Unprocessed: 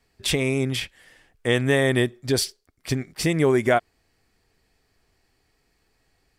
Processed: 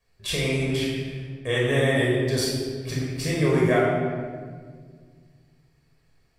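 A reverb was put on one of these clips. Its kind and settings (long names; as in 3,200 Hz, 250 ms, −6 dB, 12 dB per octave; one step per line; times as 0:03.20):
rectangular room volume 2,300 cubic metres, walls mixed, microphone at 5.6 metres
level −9.5 dB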